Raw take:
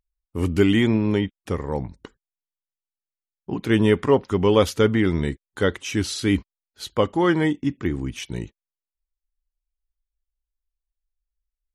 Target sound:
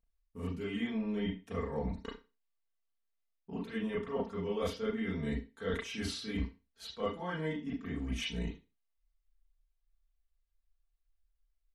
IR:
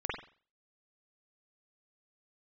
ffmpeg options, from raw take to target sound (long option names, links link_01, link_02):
-filter_complex "[0:a]areverse,acompressor=threshold=-32dB:ratio=12,areverse,aecho=1:1:4.4:0.91[link_01];[1:a]atrim=start_sample=2205,asetrate=61740,aresample=44100[link_02];[link_01][link_02]afir=irnorm=-1:irlink=0,volume=-3.5dB"